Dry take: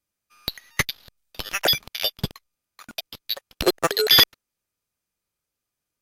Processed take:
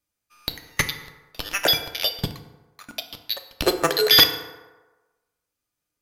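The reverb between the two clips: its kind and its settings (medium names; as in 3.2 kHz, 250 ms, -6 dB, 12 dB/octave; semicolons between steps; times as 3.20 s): FDN reverb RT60 1.2 s, low-frequency decay 0.75×, high-frequency decay 0.5×, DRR 6.5 dB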